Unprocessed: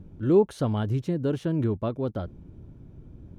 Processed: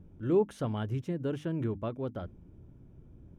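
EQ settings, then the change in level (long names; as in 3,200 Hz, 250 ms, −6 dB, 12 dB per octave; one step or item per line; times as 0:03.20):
dynamic equaliser 2,200 Hz, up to +4 dB, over −47 dBFS, Q 0.89
parametric band 4,200 Hz −8 dB 0.28 octaves
mains-hum notches 50/100/150/200/250/300 Hz
−6.5 dB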